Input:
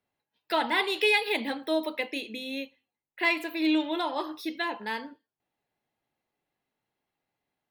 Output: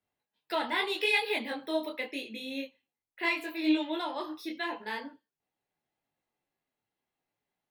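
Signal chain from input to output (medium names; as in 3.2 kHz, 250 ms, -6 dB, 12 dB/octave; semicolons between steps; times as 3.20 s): detune thickener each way 28 cents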